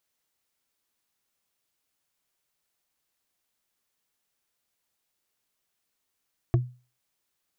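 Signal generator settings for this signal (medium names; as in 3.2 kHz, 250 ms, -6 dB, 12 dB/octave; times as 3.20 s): wood hit, lowest mode 124 Hz, decay 0.34 s, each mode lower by 6 dB, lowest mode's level -15 dB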